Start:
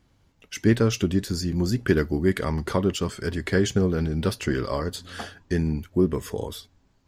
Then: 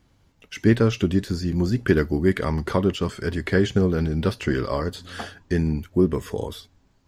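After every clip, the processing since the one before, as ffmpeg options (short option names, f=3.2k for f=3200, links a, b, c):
-filter_complex "[0:a]acrossover=split=3900[a][b];[b]acompressor=threshold=-44dB:ratio=4:attack=1:release=60[c];[a][c]amix=inputs=2:normalize=0,volume=2dB"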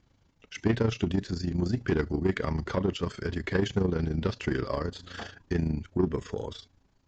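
-af "aresample=16000,asoftclip=type=tanh:threshold=-13.5dB,aresample=44100,tremolo=f=27:d=0.667,volume=-2dB"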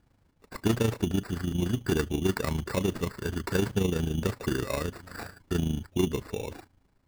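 -af "acrusher=samples=14:mix=1:aa=0.000001"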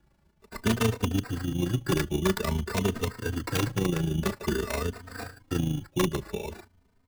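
-filter_complex "[0:a]acrossover=split=260|1700|2000[a][b][c][d];[b]aeval=exprs='(mod(11.9*val(0)+1,2)-1)/11.9':c=same[e];[a][e][c][d]amix=inputs=4:normalize=0,asplit=2[f][g];[g]adelay=3.1,afreqshift=0.49[h];[f][h]amix=inputs=2:normalize=1,volume=4dB"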